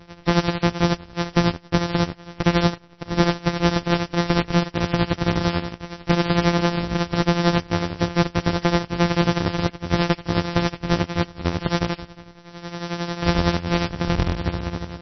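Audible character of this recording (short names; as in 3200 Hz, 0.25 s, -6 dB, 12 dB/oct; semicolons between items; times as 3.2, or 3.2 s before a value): a buzz of ramps at a fixed pitch in blocks of 256 samples; tremolo triangle 11 Hz, depth 75%; a quantiser's noise floor 12-bit, dither none; MP3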